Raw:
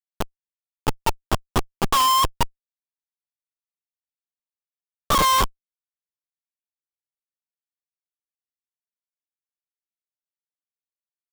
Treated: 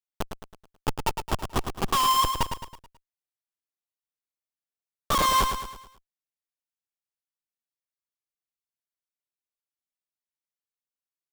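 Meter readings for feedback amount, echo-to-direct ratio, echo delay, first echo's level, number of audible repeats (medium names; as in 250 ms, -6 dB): 45%, -6.0 dB, 108 ms, -7.0 dB, 5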